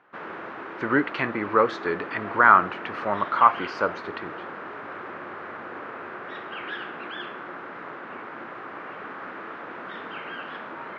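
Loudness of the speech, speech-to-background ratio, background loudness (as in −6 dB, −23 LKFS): −22.5 LKFS, 14.0 dB, −36.5 LKFS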